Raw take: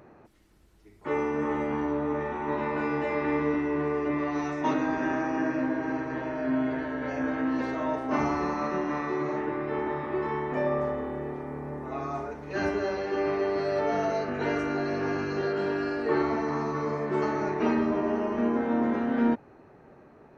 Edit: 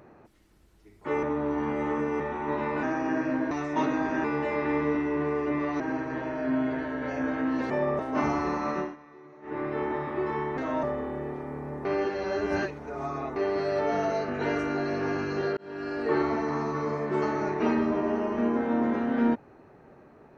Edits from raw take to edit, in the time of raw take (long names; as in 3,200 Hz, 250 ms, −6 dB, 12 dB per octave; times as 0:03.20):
0:01.23–0:02.20: reverse
0:02.83–0:04.39: swap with 0:05.12–0:05.80
0:07.70–0:07.95: swap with 0:10.54–0:10.83
0:08.74–0:09.56: duck −20.5 dB, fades 0.18 s
0:11.85–0:13.36: reverse
0:15.57–0:16.03: fade in